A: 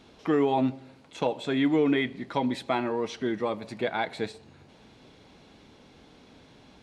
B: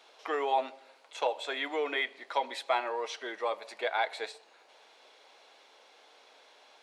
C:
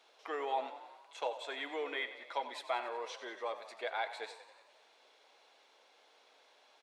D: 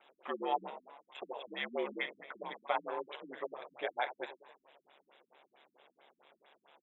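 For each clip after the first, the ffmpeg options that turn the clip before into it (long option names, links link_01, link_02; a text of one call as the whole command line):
ffmpeg -i in.wav -af "highpass=frequency=530:width=0.5412,highpass=frequency=530:width=1.3066" out.wav
ffmpeg -i in.wav -filter_complex "[0:a]asplit=8[link_01][link_02][link_03][link_04][link_05][link_06][link_07][link_08];[link_02]adelay=92,afreqshift=30,volume=-13dB[link_09];[link_03]adelay=184,afreqshift=60,volume=-16.9dB[link_10];[link_04]adelay=276,afreqshift=90,volume=-20.8dB[link_11];[link_05]adelay=368,afreqshift=120,volume=-24.6dB[link_12];[link_06]adelay=460,afreqshift=150,volume=-28.5dB[link_13];[link_07]adelay=552,afreqshift=180,volume=-32.4dB[link_14];[link_08]adelay=644,afreqshift=210,volume=-36.3dB[link_15];[link_01][link_09][link_10][link_11][link_12][link_13][link_14][link_15]amix=inputs=8:normalize=0,volume=-7dB" out.wav
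ffmpeg -i in.wav -af "aeval=exprs='val(0)*sin(2*PI*71*n/s)':channel_layout=same,asuperstop=centerf=5300:order=20:qfactor=1.5,afftfilt=real='re*lt(b*sr/1024,270*pow(7600/270,0.5+0.5*sin(2*PI*4.5*pts/sr)))':imag='im*lt(b*sr/1024,270*pow(7600/270,0.5+0.5*sin(2*PI*4.5*pts/sr)))':win_size=1024:overlap=0.75,volume=5.5dB" out.wav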